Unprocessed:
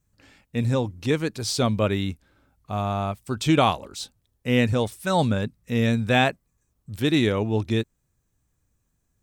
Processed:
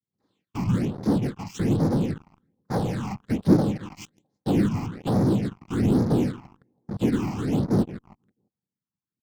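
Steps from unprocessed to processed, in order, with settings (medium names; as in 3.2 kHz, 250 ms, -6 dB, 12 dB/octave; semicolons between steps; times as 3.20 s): treble shelf 2 kHz -9 dB; low-pass that closes with the level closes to 380 Hz, closed at -22 dBFS; noise-vocoded speech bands 6; comb 3.8 ms, depth 33%; on a send: feedback delay 164 ms, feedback 55%, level -20 dB; on the sum: low-pass that closes with the level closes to 520 Hz, closed at -22 dBFS; in parallel at -9 dB: fuzz box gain 46 dB, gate -44 dBFS; on the sum: phase shifter stages 8, 1.2 Hz, lowest notch 470–2800 Hz; upward expansion 1.5:1, over -40 dBFS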